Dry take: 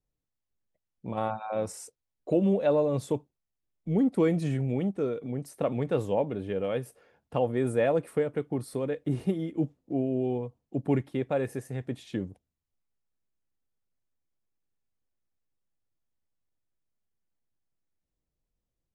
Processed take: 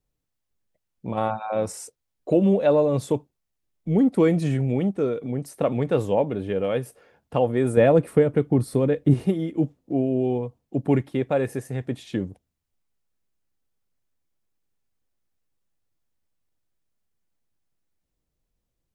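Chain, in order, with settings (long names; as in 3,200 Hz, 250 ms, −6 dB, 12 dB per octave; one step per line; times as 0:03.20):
0:07.77–0:09.14: low-shelf EQ 330 Hz +9 dB
level +5.5 dB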